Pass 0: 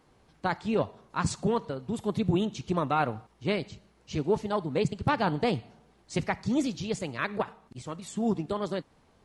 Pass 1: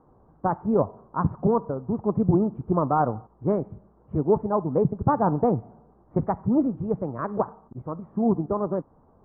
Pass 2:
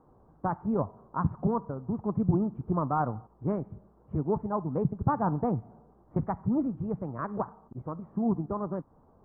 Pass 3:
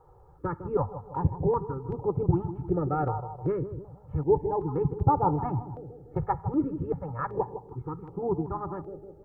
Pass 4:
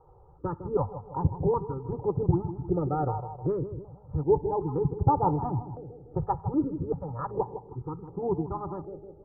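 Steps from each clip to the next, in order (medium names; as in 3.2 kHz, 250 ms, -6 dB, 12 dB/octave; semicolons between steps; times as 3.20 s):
steep low-pass 1.2 kHz 36 dB/octave; trim +5.5 dB
dynamic bell 480 Hz, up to -7 dB, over -35 dBFS, Q 0.87; trim -2.5 dB
comb 2.3 ms, depth 97%; bucket-brigade echo 157 ms, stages 1024, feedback 50%, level -10.5 dB; step-sequenced notch 2.6 Hz 280–1700 Hz; trim +2.5 dB
low-pass 1.2 kHz 24 dB/octave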